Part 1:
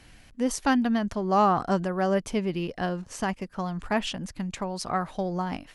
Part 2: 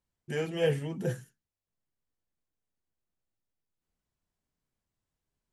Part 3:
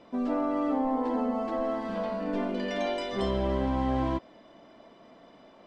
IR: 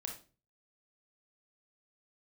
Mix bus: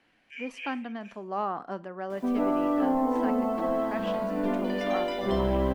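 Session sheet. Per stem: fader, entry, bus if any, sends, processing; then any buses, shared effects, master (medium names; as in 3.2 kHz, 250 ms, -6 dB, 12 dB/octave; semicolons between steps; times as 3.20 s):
-10.5 dB, 0.00 s, send -11 dB, three-band isolator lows -22 dB, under 200 Hz, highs -16 dB, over 3.5 kHz
+1.5 dB, 0.00 s, no send, ladder band-pass 2.5 kHz, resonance 85%
+2.5 dB, 2.10 s, no send, treble shelf 5 kHz -12 dB; bit crusher 10-bit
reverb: on, RT60 0.35 s, pre-delay 25 ms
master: none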